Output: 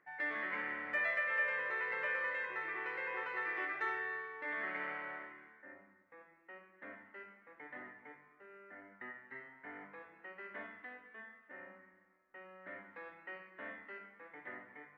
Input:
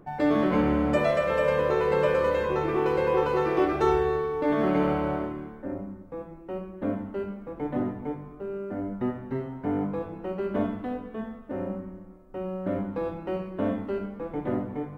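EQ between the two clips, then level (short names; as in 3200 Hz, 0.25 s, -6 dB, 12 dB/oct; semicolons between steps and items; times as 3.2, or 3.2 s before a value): band-pass 1900 Hz, Q 7.9; +5.5 dB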